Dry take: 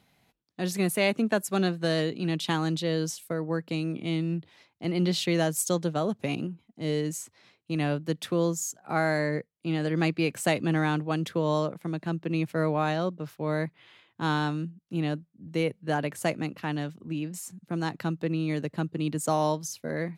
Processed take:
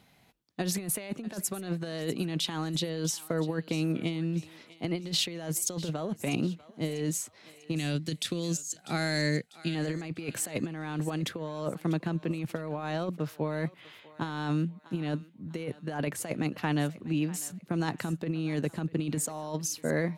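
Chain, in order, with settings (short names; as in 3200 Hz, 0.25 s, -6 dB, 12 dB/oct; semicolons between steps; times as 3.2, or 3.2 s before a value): 7.76–9.75 graphic EQ 500/1000/4000/8000 Hz -5/-11/+8/+9 dB; negative-ratio compressor -30 dBFS, ratio -0.5; on a send: thinning echo 0.646 s, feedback 43%, high-pass 800 Hz, level -16 dB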